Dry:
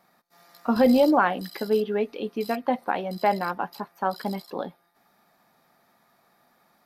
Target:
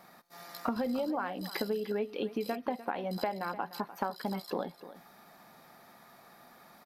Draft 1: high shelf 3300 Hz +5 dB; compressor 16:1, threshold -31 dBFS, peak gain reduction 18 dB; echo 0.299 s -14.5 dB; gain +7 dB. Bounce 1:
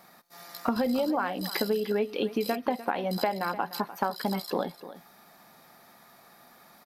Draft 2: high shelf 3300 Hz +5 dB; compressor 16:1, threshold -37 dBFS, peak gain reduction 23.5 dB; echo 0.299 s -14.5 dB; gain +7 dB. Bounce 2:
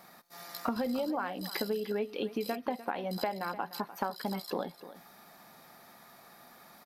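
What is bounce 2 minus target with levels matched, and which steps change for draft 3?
8000 Hz band +4.0 dB
remove: high shelf 3300 Hz +5 dB

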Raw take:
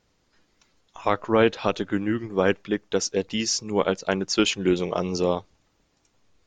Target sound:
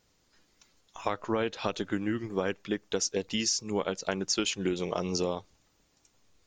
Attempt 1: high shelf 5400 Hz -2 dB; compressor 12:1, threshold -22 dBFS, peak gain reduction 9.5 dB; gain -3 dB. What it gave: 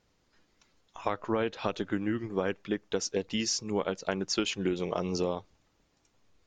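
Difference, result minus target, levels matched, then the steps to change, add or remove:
8000 Hz band -3.0 dB
change: high shelf 5400 Hz +10 dB

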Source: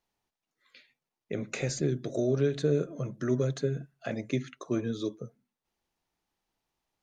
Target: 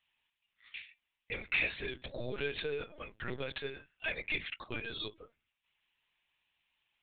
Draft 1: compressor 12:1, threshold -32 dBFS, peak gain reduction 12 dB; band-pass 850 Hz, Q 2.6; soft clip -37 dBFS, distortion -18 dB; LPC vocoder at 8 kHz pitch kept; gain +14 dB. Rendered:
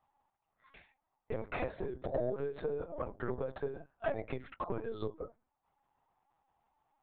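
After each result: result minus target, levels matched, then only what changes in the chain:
compressor: peak gain reduction +12 dB; 2000 Hz band -10.5 dB
remove: compressor 12:1, threshold -32 dBFS, peak gain reduction 12 dB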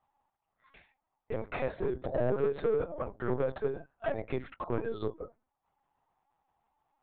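2000 Hz band -13.0 dB
change: band-pass 2700 Hz, Q 2.6

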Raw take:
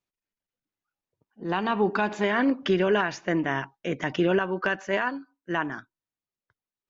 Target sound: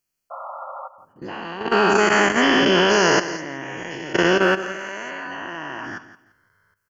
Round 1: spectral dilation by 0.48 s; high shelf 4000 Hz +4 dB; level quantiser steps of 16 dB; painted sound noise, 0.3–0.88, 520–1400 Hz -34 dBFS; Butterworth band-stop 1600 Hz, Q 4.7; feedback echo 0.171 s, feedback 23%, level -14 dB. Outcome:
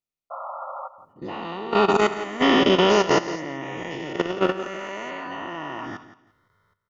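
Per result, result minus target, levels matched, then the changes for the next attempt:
8000 Hz band -4.0 dB; 2000 Hz band -4.0 dB
change: high shelf 4000 Hz +13.5 dB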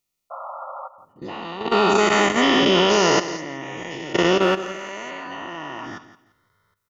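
2000 Hz band -4.5 dB
change: Butterworth band-stop 3700 Hz, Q 4.7

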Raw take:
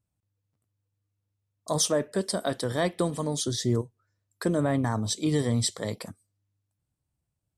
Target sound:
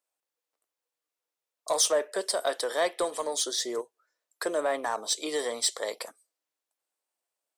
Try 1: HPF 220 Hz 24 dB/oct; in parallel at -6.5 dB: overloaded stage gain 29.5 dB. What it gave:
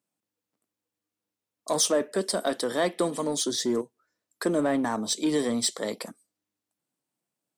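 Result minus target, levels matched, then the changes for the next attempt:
250 Hz band +11.5 dB
change: HPF 460 Hz 24 dB/oct

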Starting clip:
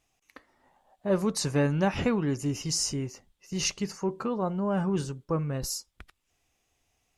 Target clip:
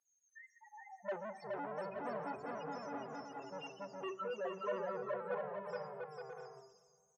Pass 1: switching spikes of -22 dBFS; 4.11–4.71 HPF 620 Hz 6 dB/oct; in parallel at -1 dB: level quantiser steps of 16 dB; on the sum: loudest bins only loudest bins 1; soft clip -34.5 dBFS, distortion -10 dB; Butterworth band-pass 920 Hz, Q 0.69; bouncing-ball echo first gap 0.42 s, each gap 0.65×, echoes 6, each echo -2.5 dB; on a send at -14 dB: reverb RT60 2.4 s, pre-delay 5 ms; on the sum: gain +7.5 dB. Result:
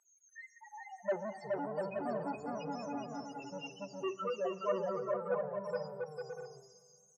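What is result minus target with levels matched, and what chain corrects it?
switching spikes: distortion +8 dB; soft clip: distortion -5 dB
switching spikes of -30.5 dBFS; 4.11–4.71 HPF 620 Hz 6 dB/oct; in parallel at -1 dB: level quantiser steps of 16 dB; on the sum: loudest bins only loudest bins 1; soft clip -42.5 dBFS, distortion -5 dB; Butterworth band-pass 920 Hz, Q 0.69; bouncing-ball echo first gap 0.42 s, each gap 0.65×, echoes 6, each echo -2.5 dB; on a send at -14 dB: reverb RT60 2.4 s, pre-delay 5 ms; on the sum: gain +7.5 dB

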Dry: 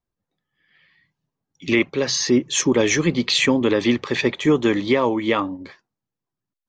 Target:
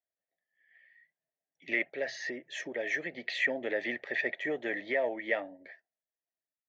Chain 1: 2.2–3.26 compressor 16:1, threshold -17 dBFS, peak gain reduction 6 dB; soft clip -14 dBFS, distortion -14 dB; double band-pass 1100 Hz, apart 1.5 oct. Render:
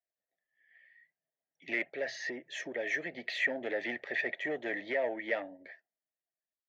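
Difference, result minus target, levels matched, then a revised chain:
soft clip: distortion +11 dB
2.2–3.26 compressor 16:1, threshold -17 dBFS, peak gain reduction 6 dB; soft clip -6.5 dBFS, distortion -25 dB; double band-pass 1100 Hz, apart 1.5 oct

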